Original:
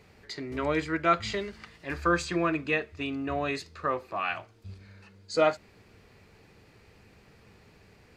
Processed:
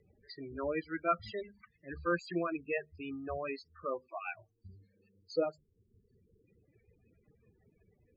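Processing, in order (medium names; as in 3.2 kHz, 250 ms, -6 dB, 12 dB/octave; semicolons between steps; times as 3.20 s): reverb removal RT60 1 s; time-frequency box 4.79–6.47 s, 560–3200 Hz -7 dB; hum notches 50/100/150/200/250 Hz; loudest bins only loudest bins 16; rotary cabinet horn 6 Hz; dynamic bell 560 Hz, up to +4 dB, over -43 dBFS, Q 2.1; trim -5 dB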